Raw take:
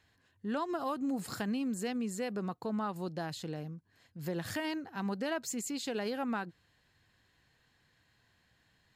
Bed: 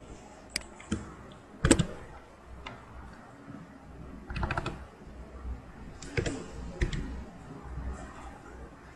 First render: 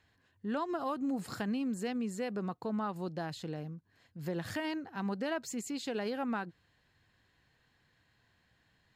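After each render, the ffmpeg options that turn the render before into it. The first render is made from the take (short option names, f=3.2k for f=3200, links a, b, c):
-af "highshelf=f=5.6k:g=-7"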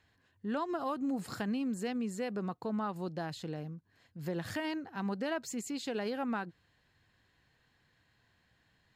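-af anull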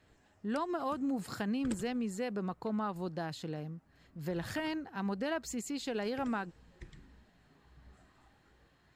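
-filter_complex "[1:a]volume=-20.5dB[a];[0:a][a]amix=inputs=2:normalize=0"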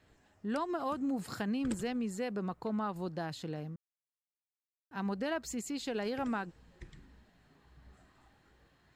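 -filter_complex "[0:a]asplit=3[a][b][c];[a]atrim=end=3.76,asetpts=PTS-STARTPTS,afade=t=out:st=3.756:d=0.004:c=hsin[d];[b]atrim=start=3.76:end=4.91,asetpts=PTS-STARTPTS,volume=0[e];[c]atrim=start=4.91,asetpts=PTS-STARTPTS,afade=t=in:d=0.004:c=hsin[f];[d][e][f]concat=n=3:v=0:a=1"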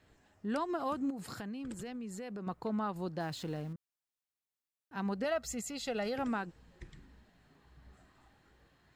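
-filter_complex "[0:a]asettb=1/sr,asplit=3[a][b][c];[a]atrim=end=1.104[d];[b]atrim=start=1.1:end=2.47,asetpts=PTS-STARTPTS,afade=t=in:d=0.004:c=qsin,afade=t=out:st=1.366:d=0.004:c=qsin,acompressor=threshold=-40dB:ratio=4:attack=3.2:release=140:knee=1:detection=peak[e];[c]atrim=start=2.466[f];[d][e]acrossfade=d=0.004:c1=hsin:c2=qsin[g];[g][f]acrossfade=d=0.004:c1=qsin:c2=hsin,asettb=1/sr,asplit=3[h][i][j];[h]atrim=end=3.204[k];[i]atrim=start=3.2:end=3.73,asetpts=PTS-STARTPTS,afade=t=in:d=0.004:c=qsin,afade=t=out:st=0.526:d=0.004:c=qsin,aeval=exprs='val(0)+0.5*0.00299*sgn(val(0))':c=same[l];[j]atrim=start=3.726[m];[k][l]acrossfade=d=0.004:c1=hsin:c2=qsin[n];[n][m]acrossfade=d=0.004:c1=qsin:c2=hsin,asettb=1/sr,asplit=3[o][p][q];[o]atrim=end=5.244[r];[p]atrim=start=5.24:end=6.16,asetpts=PTS-STARTPTS,afade=t=in:d=0.004:c=qsin,afade=t=out:st=0.916:d=0.004:c=qsin,aecho=1:1:1.5:0.65,atrim=end_sample=40572[s];[q]atrim=start=6.156[t];[r][s]acrossfade=d=0.004:c1=hsin:c2=qsin[u];[u][t]acrossfade=d=0.004:c1=qsin:c2=hsin"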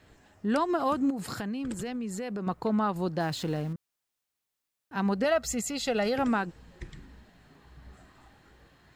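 -af "volume=8dB"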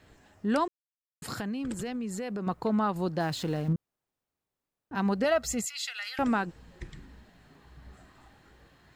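-filter_complex "[0:a]asettb=1/sr,asplit=3[a][b][c];[a]atrim=end=3.684[d];[b]atrim=start=3.68:end=4.95,asetpts=PTS-STARTPTS,afade=t=in:d=0.004:c=qsin,afade=t=out:st=1.266:d=0.004:c=qsin,tiltshelf=f=1.3k:g=8.5[e];[c]atrim=start=4.946[f];[d][e]acrossfade=d=0.004:c1=hsin:c2=qsin[g];[g][f]acrossfade=d=0.004:c1=qsin:c2=hsin,asettb=1/sr,asplit=3[h][i][j];[h]atrim=end=5.654[k];[i]atrim=start=5.65:end=6.19,asetpts=PTS-STARTPTS,afade=t=in:d=0.004:c=qsin,afade=t=out:st=0.536:d=0.004:c=qsin,highpass=f=1.5k:w=0.5412,highpass=f=1.5k:w=1.3066[l];[j]atrim=start=6.186[m];[k][l]acrossfade=d=0.004:c1=hsin:c2=qsin[n];[n][m]acrossfade=d=0.004:c1=qsin:c2=hsin,asplit=3[o][p][q];[o]atrim=end=0.68,asetpts=PTS-STARTPTS,afade=t=out:st=0.676:d=0.004:c=hsin[r];[p]atrim=start=0.68:end=1.22,asetpts=PTS-STARTPTS,volume=0[s];[q]atrim=start=1.22,asetpts=PTS-STARTPTS,afade=t=in:d=0.004:c=hsin[t];[r][s][t]concat=n=3:v=0:a=1"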